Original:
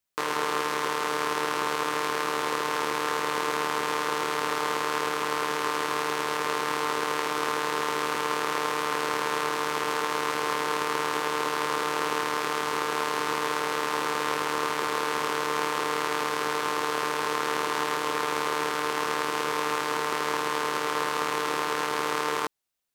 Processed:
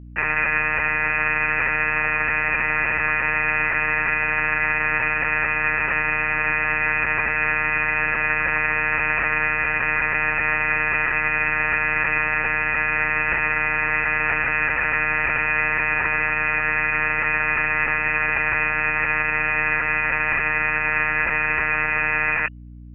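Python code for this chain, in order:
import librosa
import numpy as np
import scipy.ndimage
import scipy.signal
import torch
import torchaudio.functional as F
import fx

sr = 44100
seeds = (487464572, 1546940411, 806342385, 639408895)

y = fx.peak_eq(x, sr, hz=120.0, db=-3.0, octaves=0.77)
y = fx.freq_invert(y, sr, carrier_hz=2900)
y = fx.lpc_vocoder(y, sr, seeds[0], excitation='pitch_kept', order=16)
y = fx.add_hum(y, sr, base_hz=60, snr_db=18)
y = F.gain(torch.from_numpy(y), 7.0).numpy()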